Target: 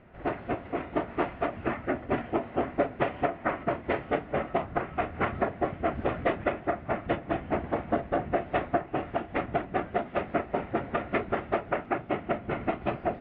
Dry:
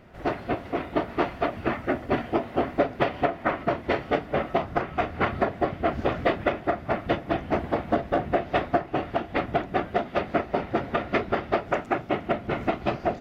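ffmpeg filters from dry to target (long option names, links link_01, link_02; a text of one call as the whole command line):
ffmpeg -i in.wav -af "lowpass=frequency=2900:width=0.5412,lowpass=frequency=2900:width=1.3066,volume=-3.5dB" out.wav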